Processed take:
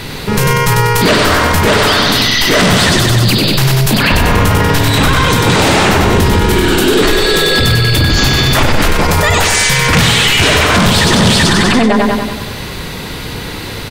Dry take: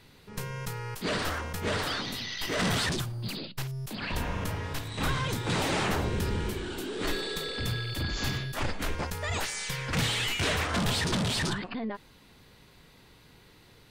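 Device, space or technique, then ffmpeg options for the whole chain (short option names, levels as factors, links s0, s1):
loud club master: -af "aecho=1:1:95|190|285|380|475|570|665:0.562|0.309|0.17|0.0936|0.0515|0.0283|0.0156,acompressor=threshold=0.0316:ratio=3,asoftclip=type=hard:threshold=0.0631,alimiter=level_in=42.2:limit=0.891:release=50:level=0:latency=1,volume=0.891"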